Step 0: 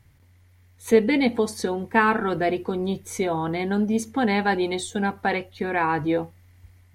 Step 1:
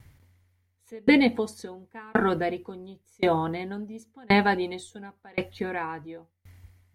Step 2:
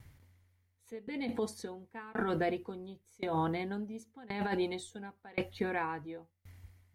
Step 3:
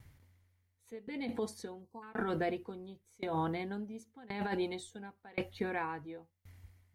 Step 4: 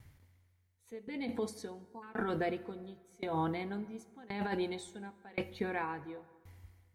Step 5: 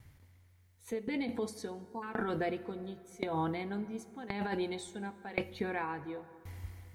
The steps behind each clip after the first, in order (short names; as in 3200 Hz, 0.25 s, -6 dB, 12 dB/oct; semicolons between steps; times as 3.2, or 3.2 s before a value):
dB-ramp tremolo decaying 0.93 Hz, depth 34 dB; gain +5 dB
negative-ratio compressor -26 dBFS, ratio -1; gain -6.5 dB
spectral delete 1.82–2.03, 1200–4000 Hz; gain -2 dB
plate-style reverb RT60 1.6 s, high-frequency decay 0.6×, DRR 15 dB
recorder AGC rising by 14 dB/s